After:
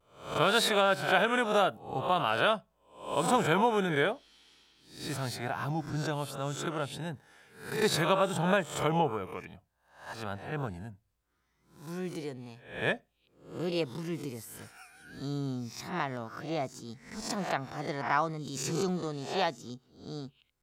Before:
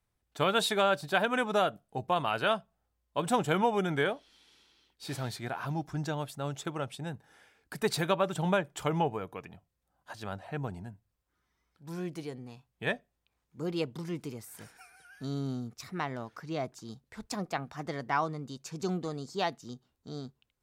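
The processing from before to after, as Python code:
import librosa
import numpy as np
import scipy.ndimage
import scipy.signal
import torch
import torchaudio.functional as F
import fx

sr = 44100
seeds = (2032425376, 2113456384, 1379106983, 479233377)

y = fx.spec_swells(x, sr, rise_s=0.5)
y = fx.vibrato(y, sr, rate_hz=0.61, depth_cents=36.0)
y = fx.pre_swell(y, sr, db_per_s=32.0, at=(18.29, 19.03))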